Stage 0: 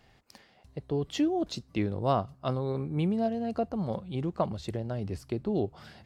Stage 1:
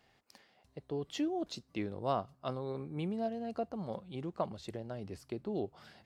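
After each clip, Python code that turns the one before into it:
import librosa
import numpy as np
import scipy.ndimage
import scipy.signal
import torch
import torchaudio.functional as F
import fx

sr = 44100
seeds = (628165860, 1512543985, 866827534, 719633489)

y = fx.low_shelf(x, sr, hz=130.0, db=-11.5)
y = y * 10.0 ** (-5.5 / 20.0)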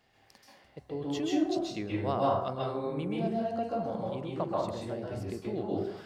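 y = fx.rev_plate(x, sr, seeds[0], rt60_s=0.73, hf_ratio=0.55, predelay_ms=120, drr_db=-5.0)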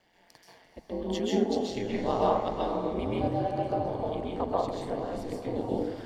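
y = fx.notch_comb(x, sr, f0_hz=1300.0)
y = y * np.sin(2.0 * np.pi * 90.0 * np.arange(len(y)) / sr)
y = fx.echo_diffused(y, sr, ms=458, feedback_pct=41, wet_db=-10.0)
y = y * 10.0 ** (5.5 / 20.0)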